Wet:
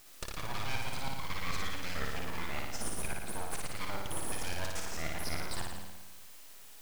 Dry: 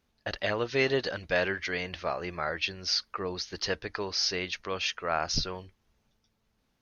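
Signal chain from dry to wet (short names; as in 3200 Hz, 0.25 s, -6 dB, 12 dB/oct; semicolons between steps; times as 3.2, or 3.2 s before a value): slices in reverse order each 0.108 s, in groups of 2; reverse; compressor, threshold -38 dBFS, peak gain reduction 16 dB; reverse; wow and flutter 19 cents; requantised 10-bit, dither triangular; full-wave rectifier; flutter echo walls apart 9.7 m, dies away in 1.1 s; gain +3.5 dB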